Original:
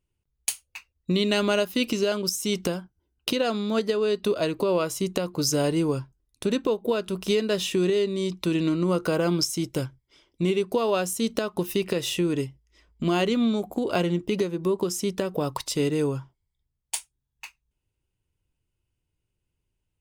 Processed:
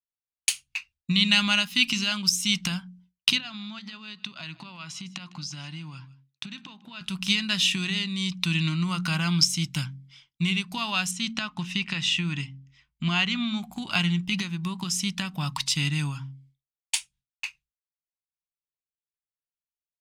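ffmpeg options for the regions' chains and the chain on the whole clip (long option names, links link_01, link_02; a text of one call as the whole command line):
ffmpeg -i in.wav -filter_complex "[0:a]asettb=1/sr,asplit=3[link_01][link_02][link_03];[link_01]atrim=end=3.384[link_04];[link_02]atrim=start=3.38:end=7.01,asetpts=PTS-STARTPTS,afade=type=in:duration=0.004:curve=qsin,afade=type=out:start_time=3.626:duration=0.004:curve=qsin,acompressor=threshold=-32dB:ratio=12:attack=3.2:release=140:knee=1:detection=peak,highpass=130,lowpass=5300,aecho=1:1:155:0.0944,atrim=end_sample=160083[link_05];[link_03]atrim=start=7.006[link_06];[link_04][link_05]acrossfade=duration=0.004:curve1=hsin:curve2=qsin[link_07];[link_07][link_06]acrossfade=duration=0.004:curve1=qsin:curve2=hsin,asettb=1/sr,asplit=3[link_08][link_09][link_10];[link_08]atrim=end=11.114[link_11];[link_09]atrim=start=11.11:end=13.63,asetpts=PTS-STARTPTS,afade=type=in:duration=0.004:curve=qsin,afade=type=out:start_time=2.516:duration=0.004:curve=qsin,lowpass=frequency=7400:width_type=q:width=1.7,bass=frequency=250:gain=-2,treble=frequency=4000:gain=-11[link_12];[link_10]atrim=start=13.626[link_13];[link_11][link_12]acrossfade=duration=0.004:curve1=hsin:curve2=qsin[link_14];[link_14][link_13]acrossfade=duration=0.004:curve1=qsin:curve2=hsin,bandreject=frequency=45.08:width_type=h:width=4,bandreject=frequency=90.16:width_type=h:width=4,bandreject=frequency=135.24:width_type=h:width=4,bandreject=frequency=180.32:width_type=h:width=4,bandreject=frequency=225.4:width_type=h:width=4,bandreject=frequency=270.48:width_type=h:width=4,agate=range=-33dB:threshold=-54dB:ratio=3:detection=peak,firequalizer=gain_entry='entry(110,0);entry(150,10);entry(450,-29);entry(770,0);entry(2500,13);entry(16000,-5)':delay=0.05:min_phase=1,volume=-3.5dB" out.wav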